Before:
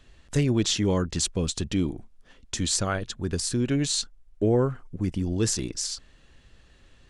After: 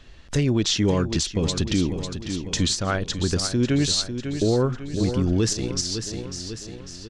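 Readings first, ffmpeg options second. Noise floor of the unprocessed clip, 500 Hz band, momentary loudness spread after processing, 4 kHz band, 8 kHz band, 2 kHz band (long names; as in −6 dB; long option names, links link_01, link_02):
−57 dBFS, +3.0 dB, 10 LU, +5.0 dB, +1.0 dB, +4.0 dB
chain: -filter_complex "[0:a]asplit=2[link_01][link_02];[link_02]aecho=0:1:548|1096|1644|2192|2740:0.282|0.141|0.0705|0.0352|0.0176[link_03];[link_01][link_03]amix=inputs=2:normalize=0,alimiter=limit=-18.5dB:level=0:latency=1:release=264,highshelf=frequency=7000:width_type=q:width=1.5:gain=-6,volume=6.5dB"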